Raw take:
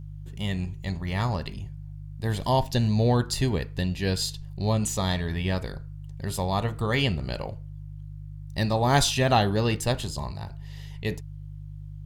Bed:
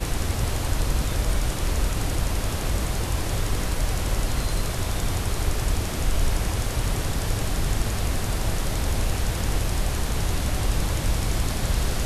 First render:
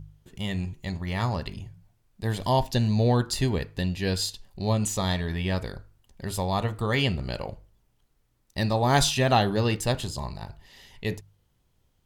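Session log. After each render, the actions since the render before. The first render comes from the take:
hum removal 50 Hz, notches 3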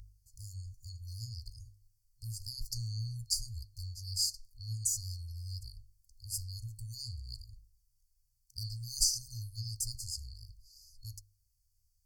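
brick-wall band-stop 120–4,300 Hz
guitar amp tone stack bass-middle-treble 10-0-10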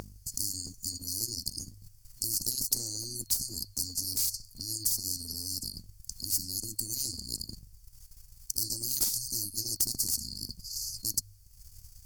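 transient designer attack +5 dB, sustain −9 dB
every bin compressed towards the loudest bin 10 to 1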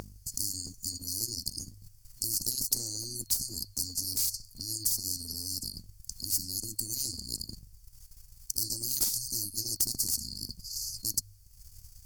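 no processing that can be heard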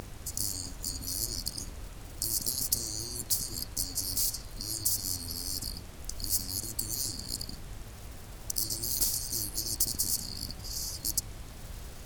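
mix in bed −20 dB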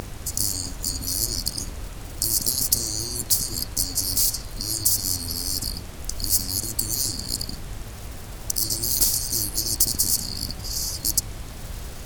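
level +8.5 dB
brickwall limiter −3 dBFS, peak gain reduction 3 dB

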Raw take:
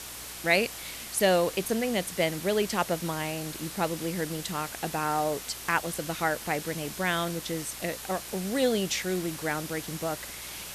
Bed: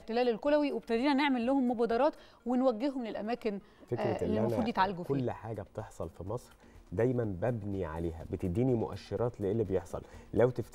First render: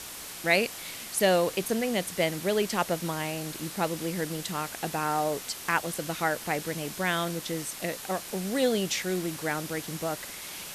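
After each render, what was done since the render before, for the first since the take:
hum removal 60 Hz, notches 2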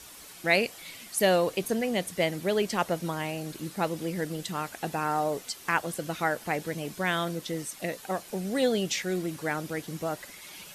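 broadband denoise 9 dB, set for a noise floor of −41 dBFS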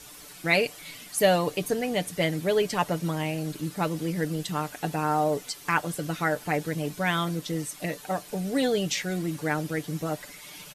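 low-shelf EQ 230 Hz +4 dB
comb filter 6.8 ms, depth 55%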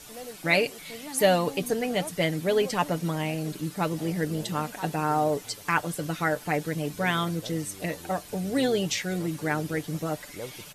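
mix in bed −12 dB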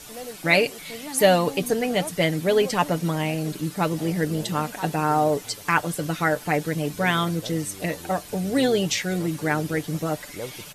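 level +4 dB

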